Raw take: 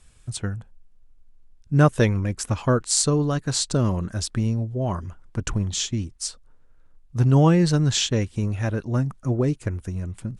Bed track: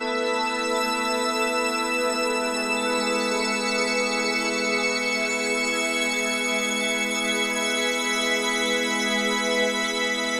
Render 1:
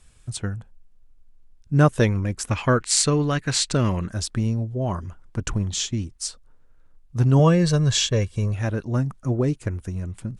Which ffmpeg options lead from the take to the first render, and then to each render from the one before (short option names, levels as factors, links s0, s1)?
-filter_complex "[0:a]asettb=1/sr,asplit=3[s0][s1][s2];[s0]atrim=end=2.514[s3];[s1]atrim=start=2.51:end=4.07,asetpts=PTS-STARTPTS,afade=t=in:d=0.004:c=qsin,afade=t=out:st=1.556:d=0.004:c=qsin,equalizer=f=2200:t=o:w=1.1:g=11.5[s4];[s2]atrim=start=4.066[s5];[s3][s4]acrossfade=d=0.004:c1=hsin:c2=qsin[s6];[s6][s5]acrossfade=d=0.004:c1=qsin:c2=hsin,asettb=1/sr,asplit=3[s7][s8][s9];[s7]atrim=end=7.394[s10];[s8]atrim=start=7.39:end=8.54,asetpts=PTS-STARTPTS,afade=t=in:d=0.004:c=qsin,afade=t=out:st=1.146:d=0.004:c=qsin,aecho=1:1:1.8:0.56,atrim=end_sample=50715[s11];[s9]atrim=start=8.536[s12];[s10][s11]acrossfade=d=0.004:c1=hsin:c2=qsin[s13];[s13][s12]acrossfade=d=0.004:c1=qsin:c2=hsin"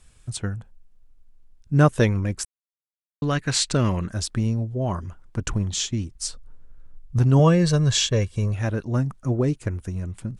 -filter_complex "[0:a]asettb=1/sr,asplit=3[s0][s1][s2];[s0]atrim=end=6.154[s3];[s1]atrim=start=6.15:end=7.19,asetpts=PTS-STARTPTS,afade=t=in:d=0.004:c=qsin,afade=t=out:st=1.036:d=0.004:c=qsin,lowshelf=f=210:g=10.5[s4];[s2]atrim=start=7.186[s5];[s3][s4]acrossfade=d=0.004:c1=hsin:c2=qsin[s6];[s6][s5]acrossfade=d=0.004:c1=qsin:c2=hsin,asplit=3[s7][s8][s9];[s7]atrim=end=2.45,asetpts=PTS-STARTPTS,afade=t=out:st=2.446:d=0.004:c=hsin[s10];[s8]atrim=start=2.45:end=3.22,asetpts=PTS-STARTPTS,volume=0[s11];[s9]atrim=start=3.22,asetpts=PTS-STARTPTS,afade=t=in:d=0.004:c=hsin[s12];[s10][s11][s12]concat=n=3:v=0:a=1"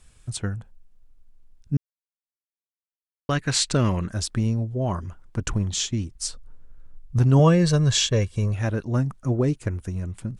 -filter_complex "[0:a]asplit=3[s0][s1][s2];[s0]atrim=end=1.77,asetpts=PTS-STARTPTS,afade=t=out:st=1.766:d=0.004:c=hsin[s3];[s1]atrim=start=1.77:end=3.29,asetpts=PTS-STARTPTS,volume=0[s4];[s2]atrim=start=3.29,asetpts=PTS-STARTPTS,afade=t=in:d=0.004:c=hsin[s5];[s3][s4][s5]concat=n=3:v=0:a=1"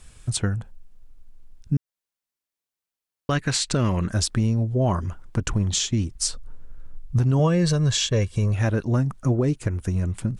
-filter_complex "[0:a]asplit=2[s0][s1];[s1]acompressor=threshold=0.0447:ratio=6,volume=1.12[s2];[s0][s2]amix=inputs=2:normalize=0,alimiter=limit=0.237:level=0:latency=1:release=236"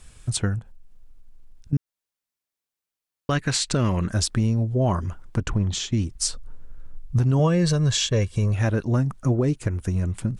-filter_complex "[0:a]asettb=1/sr,asplit=3[s0][s1][s2];[s0]atrim=end=0.594[s3];[s1]atrim=start=0.59:end=1.73,asetpts=PTS-STARTPTS,afade=t=in:d=0.004:c=qsin,afade=t=out:st=1.136:d=0.004:c=qsin,acompressor=threshold=0.00891:ratio=2.5:attack=3.2:release=140:knee=1:detection=peak[s4];[s2]atrim=start=1.726[s5];[s3][s4]acrossfade=d=0.004:c1=hsin:c2=qsin[s6];[s6][s5]acrossfade=d=0.004:c1=qsin:c2=hsin,asettb=1/sr,asplit=3[s7][s8][s9];[s7]atrim=end=5.434[s10];[s8]atrim=start=5.43:end=5.92,asetpts=PTS-STARTPTS,afade=t=in:d=0.004:c=qsin,afade=t=out:st=0.486:d=0.004:c=qsin,lowpass=f=3300:p=1[s11];[s9]atrim=start=5.916[s12];[s10][s11]acrossfade=d=0.004:c1=hsin:c2=qsin[s13];[s13][s12]acrossfade=d=0.004:c1=qsin:c2=hsin"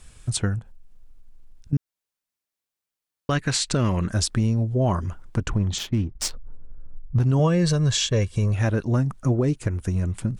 -filter_complex "[0:a]asettb=1/sr,asplit=3[s0][s1][s2];[s0]atrim=end=5.784[s3];[s1]atrim=start=5.78:end=7.2,asetpts=PTS-STARTPTS,afade=t=in:d=0.004:c=qsin,afade=t=out:st=1.416:d=0.004:c=qsin,adynamicsmooth=sensitivity=6:basefreq=1000[s4];[s2]atrim=start=7.196[s5];[s3][s4]acrossfade=d=0.004:c1=hsin:c2=qsin[s6];[s6][s5]acrossfade=d=0.004:c1=qsin:c2=hsin"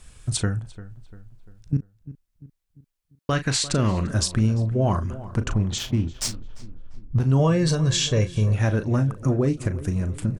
-filter_complex "[0:a]asplit=2[s0][s1];[s1]adelay=37,volume=0.299[s2];[s0][s2]amix=inputs=2:normalize=0,asplit=2[s3][s4];[s4]adelay=346,lowpass=f=2100:p=1,volume=0.158,asplit=2[s5][s6];[s6]adelay=346,lowpass=f=2100:p=1,volume=0.49,asplit=2[s7][s8];[s8]adelay=346,lowpass=f=2100:p=1,volume=0.49,asplit=2[s9][s10];[s10]adelay=346,lowpass=f=2100:p=1,volume=0.49[s11];[s3][s5][s7][s9][s11]amix=inputs=5:normalize=0"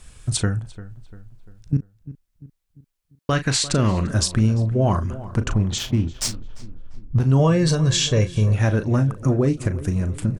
-af "volume=1.33"